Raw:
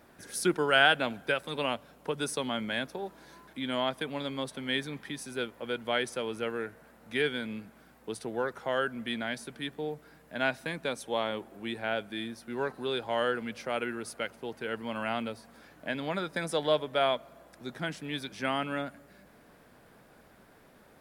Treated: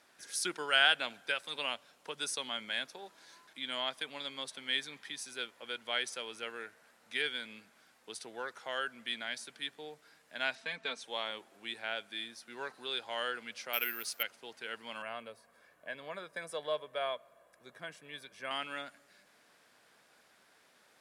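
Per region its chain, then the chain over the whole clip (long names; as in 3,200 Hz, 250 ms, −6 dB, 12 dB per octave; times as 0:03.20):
0:10.55–0:11.04: Bessel low-pass filter 4,100 Hz + comb filter 4.5 ms, depth 76%
0:13.73–0:14.23: dynamic equaliser 2,600 Hz, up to +6 dB, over −49 dBFS, Q 0.98 + bad sample-rate conversion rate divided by 3×, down none, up zero stuff
0:15.02–0:18.51: parametric band 4,900 Hz −14.5 dB 2.1 octaves + comb filter 1.8 ms, depth 46%
whole clip: low-pass filter 6,500 Hz 12 dB per octave; spectral tilt +4.5 dB per octave; level −7 dB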